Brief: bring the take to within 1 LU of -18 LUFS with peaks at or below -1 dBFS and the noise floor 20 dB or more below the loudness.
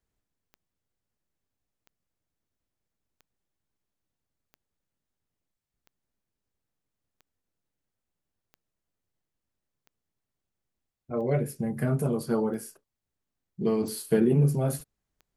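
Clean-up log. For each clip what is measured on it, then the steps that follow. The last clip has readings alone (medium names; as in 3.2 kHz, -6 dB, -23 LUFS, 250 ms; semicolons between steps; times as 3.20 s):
clicks found 12; loudness -27.5 LUFS; peak level -12.0 dBFS; loudness target -18.0 LUFS
-> de-click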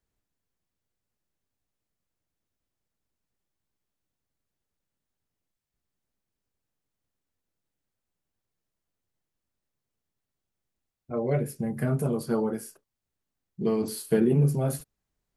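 clicks found 0; loudness -27.5 LUFS; peak level -12.0 dBFS; loudness target -18.0 LUFS
-> trim +9.5 dB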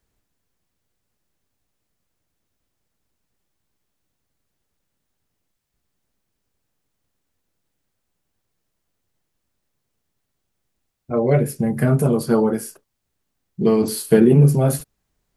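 loudness -18.0 LUFS; peak level -2.5 dBFS; noise floor -76 dBFS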